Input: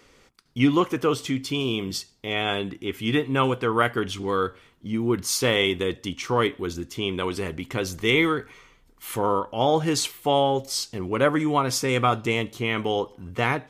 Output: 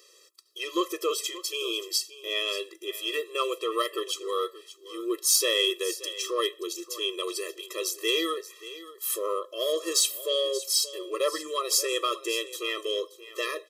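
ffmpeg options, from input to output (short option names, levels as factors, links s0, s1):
-filter_complex "[0:a]asoftclip=type=tanh:threshold=0.335,asplit=2[s0][s1];[s1]aecho=0:1:579:0.158[s2];[s0][s2]amix=inputs=2:normalize=0,aexciter=amount=2.4:drive=8.6:freq=3000,afftfilt=real='re*eq(mod(floor(b*sr/1024/340),2),1)':imag='im*eq(mod(floor(b*sr/1024/340),2),1)':win_size=1024:overlap=0.75,volume=0.631"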